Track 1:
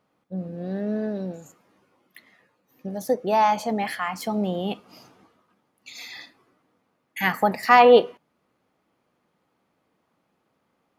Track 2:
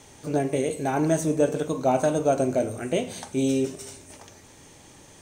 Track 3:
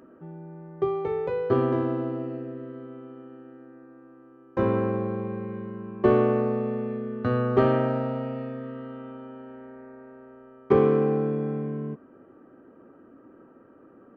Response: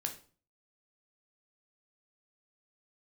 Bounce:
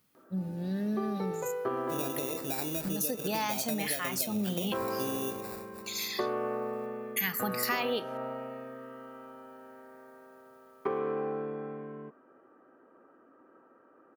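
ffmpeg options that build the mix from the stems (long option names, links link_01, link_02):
-filter_complex "[0:a]equalizer=frequency=700:width_type=o:width=2:gain=-13,volume=1.5dB[link_01];[1:a]agate=range=-33dB:threshold=-41dB:ratio=3:detection=peak,acompressor=threshold=-24dB:ratio=6,acrusher=samples=14:mix=1:aa=0.000001,adelay=1650,volume=-8dB[link_02];[2:a]bandpass=frequency=1100:width_type=q:width=0.77:csg=0,adelay=150,volume=-1.5dB[link_03];[link_01][link_02][link_03]amix=inputs=3:normalize=0,aemphasis=mode=production:type=50fm,acompressor=threshold=-28dB:ratio=6"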